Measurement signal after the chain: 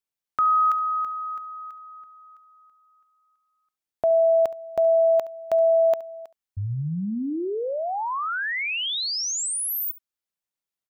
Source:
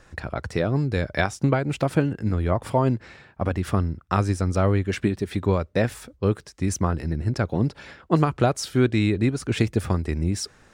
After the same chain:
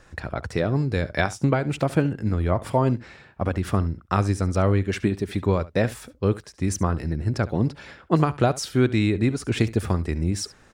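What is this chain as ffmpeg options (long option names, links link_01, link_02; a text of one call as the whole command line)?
ffmpeg -i in.wav -af "aecho=1:1:70:0.119" out.wav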